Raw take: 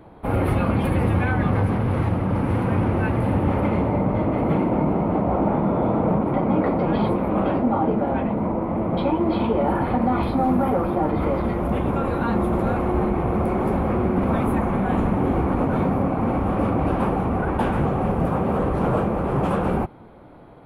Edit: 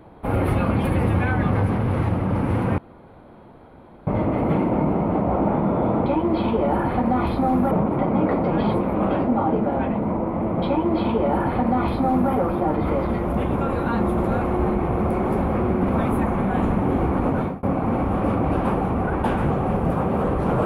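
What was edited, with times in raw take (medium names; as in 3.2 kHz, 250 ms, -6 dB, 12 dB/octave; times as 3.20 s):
2.78–4.07 s: room tone
9.02–10.67 s: copy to 6.06 s
15.72–15.98 s: fade out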